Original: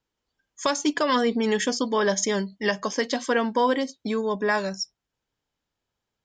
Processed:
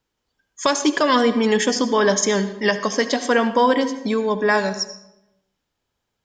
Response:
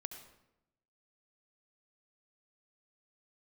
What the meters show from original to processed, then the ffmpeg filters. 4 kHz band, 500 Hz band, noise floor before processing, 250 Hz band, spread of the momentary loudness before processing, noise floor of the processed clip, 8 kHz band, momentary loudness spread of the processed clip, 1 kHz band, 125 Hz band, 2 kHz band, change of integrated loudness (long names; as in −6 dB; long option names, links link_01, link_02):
+5.5 dB, +5.5 dB, −84 dBFS, +5.5 dB, 6 LU, −78 dBFS, +5.5 dB, 6 LU, +5.5 dB, can't be measured, +5.5 dB, +5.5 dB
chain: -filter_complex "[0:a]asplit=2[link_01][link_02];[1:a]atrim=start_sample=2205[link_03];[link_02][link_03]afir=irnorm=-1:irlink=0,volume=6dB[link_04];[link_01][link_04]amix=inputs=2:normalize=0,volume=-2dB"